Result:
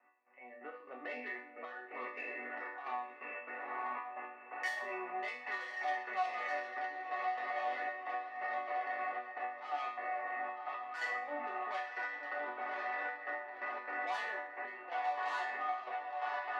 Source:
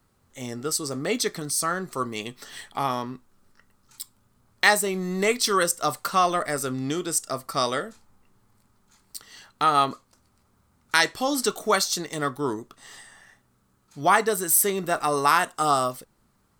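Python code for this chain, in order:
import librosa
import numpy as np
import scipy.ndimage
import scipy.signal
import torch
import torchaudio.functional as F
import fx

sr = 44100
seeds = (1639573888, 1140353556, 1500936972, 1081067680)

p1 = fx.spec_trails(x, sr, decay_s=0.31)
p2 = scipy.signal.sosfilt(scipy.signal.cheby1(6, 9, 2700.0, 'lowpass', fs=sr, output='sos'), p1)
p3 = fx.notch(p2, sr, hz=1400.0, q=19.0)
p4 = p3 + fx.echo_diffused(p3, sr, ms=1048, feedback_pct=70, wet_db=-3, dry=0)
p5 = 10.0 ** (-22.0 / 20.0) * np.tanh(p4 / 10.0 ** (-22.0 / 20.0))
p6 = fx.step_gate(p5, sr, bpm=173, pattern='x..x...xx.xxxxx', floor_db=-12.0, edge_ms=4.5)
p7 = fx.over_compress(p6, sr, threshold_db=-34.0, ratio=-1.0)
p8 = p6 + (p7 * 10.0 ** (-2.5 / 20.0))
p9 = scipy.signal.sosfilt(scipy.signal.butter(2, 690.0, 'highpass', fs=sr, output='sos'), p8)
p10 = fx.resonator_bank(p9, sr, root=59, chord='minor', decay_s=0.45)
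p11 = fx.band_squash(p10, sr, depth_pct=40)
y = p11 * 10.0 ** (10.5 / 20.0)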